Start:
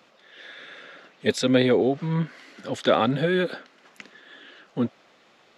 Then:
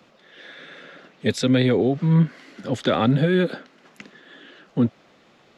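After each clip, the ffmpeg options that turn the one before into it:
-filter_complex "[0:a]lowshelf=f=300:g=11.5,acrossover=split=120|1200[a][b][c];[b]alimiter=limit=-11.5dB:level=0:latency=1:release=211[d];[a][d][c]amix=inputs=3:normalize=0"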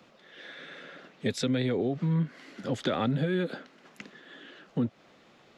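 -af "acompressor=threshold=-24dB:ratio=2.5,volume=-3dB"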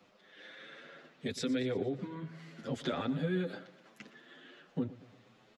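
-filter_complex "[0:a]aecho=1:1:117|234|351|468|585:0.15|0.0793|0.042|0.0223|0.0118,asplit=2[a][b];[b]adelay=7.9,afreqshift=0.61[c];[a][c]amix=inputs=2:normalize=1,volume=-3dB"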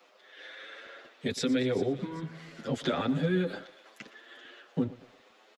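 -filter_complex "[0:a]acrossover=split=330|790|2600[a][b][c][d];[a]aeval=exprs='sgn(val(0))*max(abs(val(0))-0.00106,0)':c=same[e];[d]aecho=1:1:391|782|1173|1564:0.178|0.0694|0.027|0.0105[f];[e][b][c][f]amix=inputs=4:normalize=0,volume=5.5dB"

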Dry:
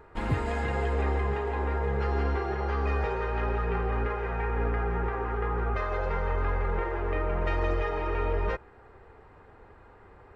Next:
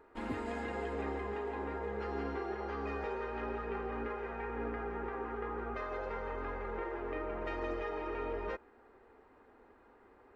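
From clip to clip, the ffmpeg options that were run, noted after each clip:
-af "lowshelf=f=190:t=q:w=3:g=-8,volume=-8.5dB"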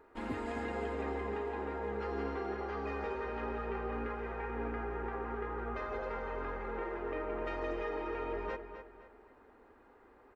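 -filter_complex "[0:a]asplit=2[a][b];[b]adelay=257,lowpass=f=4.9k:p=1,volume=-9.5dB,asplit=2[c][d];[d]adelay=257,lowpass=f=4.9k:p=1,volume=0.39,asplit=2[e][f];[f]adelay=257,lowpass=f=4.9k:p=1,volume=0.39,asplit=2[g][h];[h]adelay=257,lowpass=f=4.9k:p=1,volume=0.39[i];[a][c][e][g][i]amix=inputs=5:normalize=0"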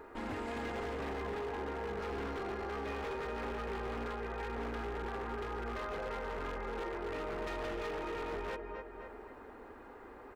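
-af "aeval=exprs='0.02*(abs(mod(val(0)/0.02+3,4)-2)-1)':c=same,alimiter=level_in=19dB:limit=-24dB:level=0:latency=1:release=304,volume=-19dB,volume=9.5dB"

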